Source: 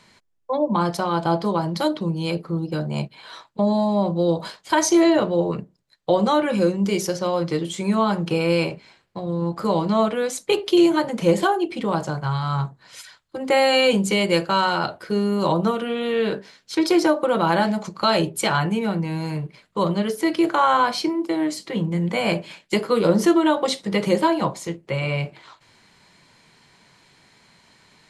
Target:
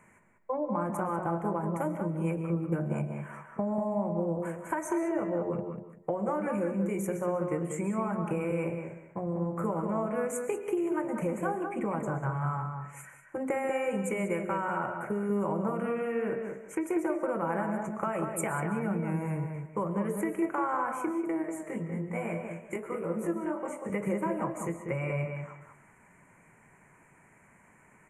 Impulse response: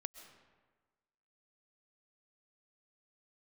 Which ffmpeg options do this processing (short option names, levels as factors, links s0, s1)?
-filter_complex "[0:a]acompressor=threshold=0.0562:ratio=6,asettb=1/sr,asplit=3[s0][s1][s2];[s0]atrim=end=21.424[s3];[s1]atrim=start=21.42:end=23.9,asetpts=PTS-STARTPTS,afade=t=in:d=0.004:c=qsin,afade=t=out:st=2.476:d=0.004:c=qsin,flanger=delay=17.5:depth=5.6:speed=1.2[s4];[s2]atrim=start=23.896[s5];[s3][s4]acrossfade=d=0.004:c1=hsin:c2=qsin[s6];[s6][s5]acrossfade=d=0.004:c1=qsin:c2=hsin,asuperstop=centerf=4200:order=8:qfactor=0.87,asplit=2[s7][s8];[s8]adelay=192,lowpass=f=2600:p=1,volume=0.531,asplit=2[s9][s10];[s10]adelay=192,lowpass=f=2600:p=1,volume=0.2,asplit=2[s11][s12];[s12]adelay=192,lowpass=f=2600:p=1,volume=0.2[s13];[s7][s9][s11][s13]amix=inputs=4:normalize=0[s14];[1:a]atrim=start_sample=2205,afade=t=out:st=0.24:d=0.01,atrim=end_sample=11025[s15];[s14][s15]afir=irnorm=-1:irlink=0"